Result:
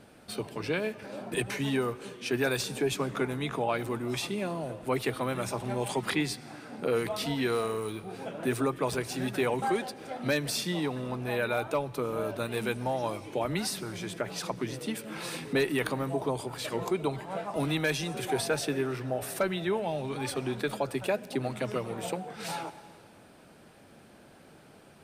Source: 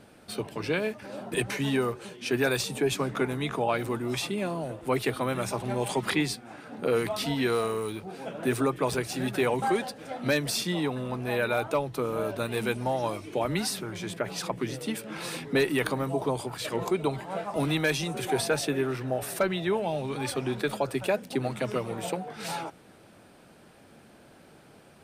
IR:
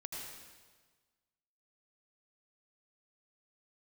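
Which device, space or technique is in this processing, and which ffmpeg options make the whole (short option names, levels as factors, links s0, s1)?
ducked reverb: -filter_complex "[0:a]asplit=3[s0][s1][s2];[1:a]atrim=start_sample=2205[s3];[s1][s3]afir=irnorm=-1:irlink=0[s4];[s2]apad=whole_len=1104063[s5];[s4][s5]sidechaincompress=threshold=0.02:ratio=8:attack=12:release=620,volume=0.501[s6];[s0][s6]amix=inputs=2:normalize=0,volume=0.708"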